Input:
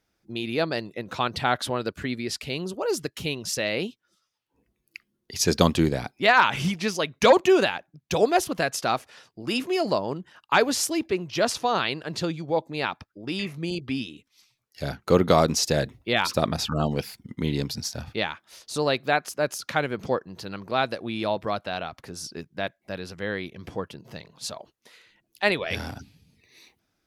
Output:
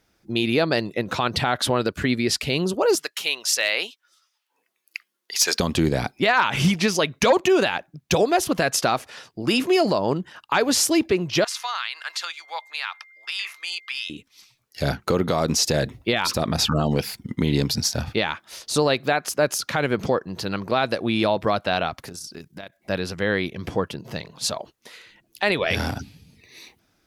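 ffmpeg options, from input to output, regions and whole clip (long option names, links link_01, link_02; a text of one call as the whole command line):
ffmpeg -i in.wav -filter_complex "[0:a]asettb=1/sr,asplit=3[link_01][link_02][link_03];[link_01]atrim=end=2.954[link_04];[link_02]atrim=start=2.95:end=5.6,asetpts=PTS-STARTPTS,afade=type=in:duration=0.004:curve=qsin,afade=type=out:start_time=2.646:duration=0.004:curve=qsin,highpass=910,asoftclip=type=hard:threshold=-17dB[link_05];[link_03]atrim=start=5.596[link_06];[link_04][link_05]acrossfade=duration=0.004:curve1=hsin:curve2=qsin[link_07];[link_07][link_06]acrossfade=duration=0.004:curve1=qsin:curve2=hsin,asettb=1/sr,asplit=3[link_08][link_09][link_10];[link_08]atrim=end=11.444[link_11];[link_09]atrim=start=11.44:end=14.1,asetpts=PTS-STARTPTS,afade=type=in:duration=0.004:curve=qsin,afade=type=out:start_time=2.656:duration=0.004:curve=qsin,highpass=frequency=1100:width=0.5412,highpass=frequency=1100:width=1.3066,acompressor=threshold=-32dB:ratio=6:attack=3.2:release=140:knee=1:detection=peak,aeval=exprs='val(0)+0.00141*sin(2*PI*2100*n/s)':channel_layout=same[link_12];[link_10]atrim=start=14.096[link_13];[link_11][link_12]acrossfade=duration=0.004:curve1=hsin:curve2=qsin[link_14];[link_14][link_13]acrossfade=duration=0.004:curve1=qsin:curve2=hsin,asettb=1/sr,asplit=3[link_15][link_16][link_17];[link_15]atrim=end=21.994[link_18];[link_16]atrim=start=21.99:end=22.77,asetpts=PTS-STARTPTS,afade=type=in:duration=0.004:curve=qsin,afade=type=out:start_time=0.776:duration=0.004:curve=qsin,aemphasis=mode=production:type=cd,acompressor=threshold=-39dB:ratio=12:attack=3.2:release=140:knee=1:detection=peak,tremolo=f=31:d=0.462[link_19];[link_17]atrim=start=22.766[link_20];[link_18][link_19]acrossfade=duration=0.004:curve1=hsin:curve2=qsin[link_21];[link_21][link_20]acrossfade=duration=0.004:curve1=qsin:curve2=hsin,acompressor=threshold=-23dB:ratio=3,alimiter=level_in=17dB:limit=-1dB:release=50:level=0:latency=1,volume=-8.5dB" out.wav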